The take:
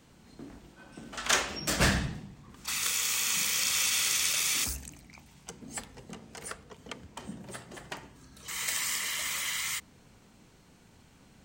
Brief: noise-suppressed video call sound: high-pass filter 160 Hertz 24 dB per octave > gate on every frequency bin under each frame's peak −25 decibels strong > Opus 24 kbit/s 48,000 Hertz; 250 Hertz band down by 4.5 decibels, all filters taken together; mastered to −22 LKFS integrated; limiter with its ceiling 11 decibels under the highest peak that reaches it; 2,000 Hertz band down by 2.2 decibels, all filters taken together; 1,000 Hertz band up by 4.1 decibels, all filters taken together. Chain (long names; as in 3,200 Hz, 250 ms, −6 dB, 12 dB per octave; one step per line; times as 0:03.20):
parametric band 250 Hz −5.5 dB
parametric band 1,000 Hz +7 dB
parametric band 2,000 Hz −4.5 dB
brickwall limiter −21.5 dBFS
high-pass filter 160 Hz 24 dB per octave
gate on every frequency bin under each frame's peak −25 dB strong
level +10.5 dB
Opus 24 kbit/s 48,000 Hz